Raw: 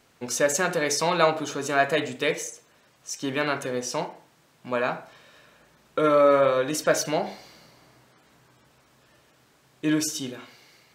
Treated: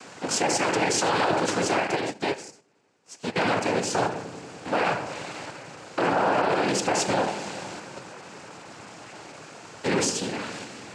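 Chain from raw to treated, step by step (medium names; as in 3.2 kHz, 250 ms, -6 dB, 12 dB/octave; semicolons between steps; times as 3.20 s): spectral levelling over time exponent 0.6; noise-vocoded speech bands 8; in parallel at -2 dB: level held to a coarse grid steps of 13 dB; on the sum: peak limiter -10 dBFS, peak gain reduction 6.5 dB; on a send: feedback echo behind a low-pass 95 ms, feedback 81%, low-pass 440 Hz, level -12 dB; 1.80–3.36 s: on the sum: upward expansion 2.5:1, over -35 dBFS; trim -4 dB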